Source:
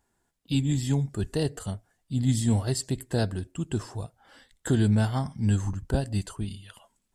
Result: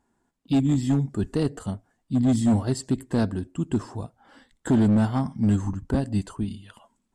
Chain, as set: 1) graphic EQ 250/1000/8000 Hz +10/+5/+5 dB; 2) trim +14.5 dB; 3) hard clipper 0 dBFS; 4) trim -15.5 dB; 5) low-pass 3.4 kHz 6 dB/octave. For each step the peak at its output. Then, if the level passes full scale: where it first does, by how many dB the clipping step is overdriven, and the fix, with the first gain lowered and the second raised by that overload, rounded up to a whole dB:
-6.5 dBFS, +8.0 dBFS, 0.0 dBFS, -15.5 dBFS, -15.5 dBFS; step 2, 8.0 dB; step 2 +6.5 dB, step 4 -7.5 dB

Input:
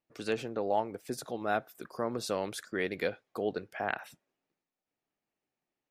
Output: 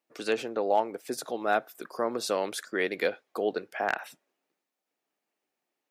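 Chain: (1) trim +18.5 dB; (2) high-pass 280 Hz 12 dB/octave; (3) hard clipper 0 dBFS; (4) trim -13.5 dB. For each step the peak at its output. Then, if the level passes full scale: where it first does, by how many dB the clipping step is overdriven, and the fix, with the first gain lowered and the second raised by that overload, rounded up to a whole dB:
+3.5 dBFS, +3.5 dBFS, 0.0 dBFS, -13.5 dBFS; step 1, 3.5 dB; step 1 +14.5 dB, step 4 -9.5 dB

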